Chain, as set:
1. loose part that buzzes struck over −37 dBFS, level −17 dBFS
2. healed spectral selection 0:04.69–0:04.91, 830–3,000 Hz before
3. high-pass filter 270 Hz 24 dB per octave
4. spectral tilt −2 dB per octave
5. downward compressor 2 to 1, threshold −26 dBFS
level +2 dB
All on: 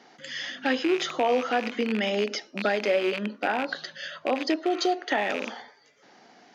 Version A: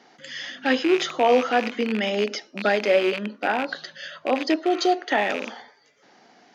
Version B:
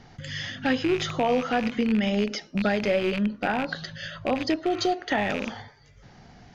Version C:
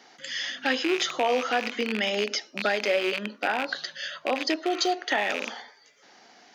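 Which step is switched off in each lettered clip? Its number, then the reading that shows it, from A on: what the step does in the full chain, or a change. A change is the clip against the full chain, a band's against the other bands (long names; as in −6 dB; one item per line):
5, change in momentary loudness spread +4 LU
3, 250 Hz band +4.5 dB
4, 4 kHz band +4.5 dB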